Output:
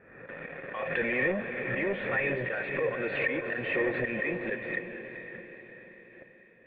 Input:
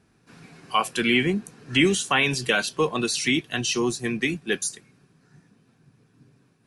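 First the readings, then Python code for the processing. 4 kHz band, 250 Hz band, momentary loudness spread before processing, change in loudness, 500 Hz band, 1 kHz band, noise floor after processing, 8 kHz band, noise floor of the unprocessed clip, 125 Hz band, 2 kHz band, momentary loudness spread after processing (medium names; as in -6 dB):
-23.0 dB, -10.5 dB, 6 LU, -7.5 dB, -3.0 dB, -11.5 dB, -57 dBFS, under -40 dB, -63 dBFS, -9.0 dB, -3.5 dB, 17 LU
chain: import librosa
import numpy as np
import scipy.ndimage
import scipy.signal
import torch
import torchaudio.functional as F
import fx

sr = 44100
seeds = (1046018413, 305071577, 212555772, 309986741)

p1 = fx.peak_eq(x, sr, hz=1300.0, db=13.0, octaves=1.0)
p2 = fx.rider(p1, sr, range_db=3, speed_s=0.5)
p3 = p1 + (p2 * librosa.db_to_amplitude(1.0))
p4 = fx.auto_swell(p3, sr, attack_ms=337.0)
p5 = fx.leveller(p4, sr, passes=5)
p6 = 10.0 ** (-14.0 / 20.0) * np.tanh(p5 / 10.0 ** (-14.0 / 20.0))
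p7 = fx.formant_cascade(p6, sr, vowel='e')
p8 = fx.echo_diffused(p7, sr, ms=475, feedback_pct=51, wet_db=-7.5)
y = fx.pre_swell(p8, sr, db_per_s=58.0)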